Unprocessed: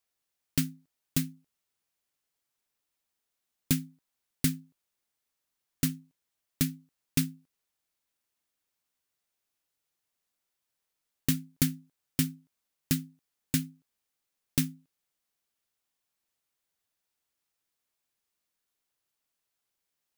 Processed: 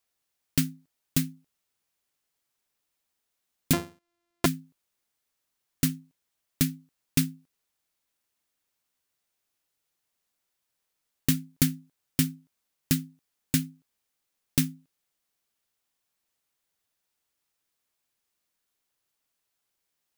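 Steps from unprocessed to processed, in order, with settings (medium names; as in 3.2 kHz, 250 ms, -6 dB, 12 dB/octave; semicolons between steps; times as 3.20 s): 3.73–4.46 s: sorted samples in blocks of 128 samples; trim +3 dB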